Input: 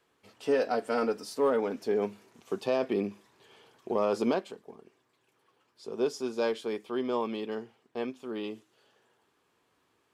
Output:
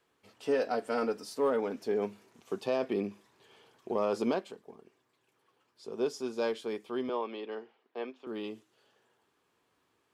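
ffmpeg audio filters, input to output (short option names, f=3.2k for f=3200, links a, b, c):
-filter_complex "[0:a]asettb=1/sr,asplit=3[a][b][c];[a]atrim=end=7.094[d];[b]atrim=start=7.09:end=8.27,asetpts=PTS-STARTPTS,afade=t=in:d=0.004:c=qsin,afade=t=out:st=1.176:d=0.004:c=qsin,acrossover=split=270 4700:gain=0.0708 1 0.0708[e][f][g];[e][f][g]amix=inputs=3:normalize=0[h];[c]atrim=start=8.266[i];[d][h]acrossfade=d=0.004:c1=hsin:c2=qsin[j];[j][i]acrossfade=d=0.004:c1=qsin:c2=hsin,volume=-2.5dB"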